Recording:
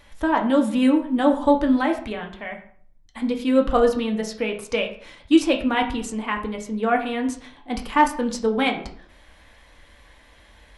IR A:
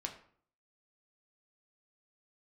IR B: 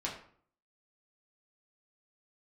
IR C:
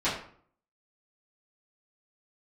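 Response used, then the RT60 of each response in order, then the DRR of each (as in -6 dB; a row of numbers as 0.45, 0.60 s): A; 0.55, 0.55, 0.55 s; 2.0, -4.5, -13.5 dB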